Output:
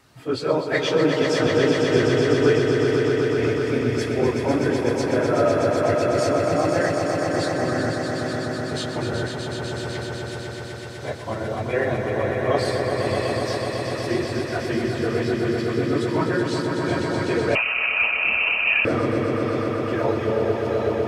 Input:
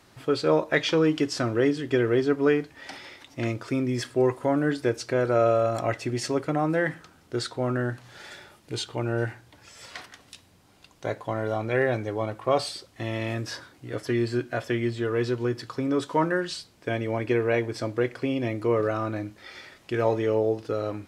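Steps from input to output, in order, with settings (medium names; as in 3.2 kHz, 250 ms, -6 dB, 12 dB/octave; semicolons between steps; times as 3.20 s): phase randomisation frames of 50 ms; on a send: echo with a slow build-up 125 ms, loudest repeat 5, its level -6.5 dB; 17.55–18.85 s: on the sum: frequency inversion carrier 2.9 kHz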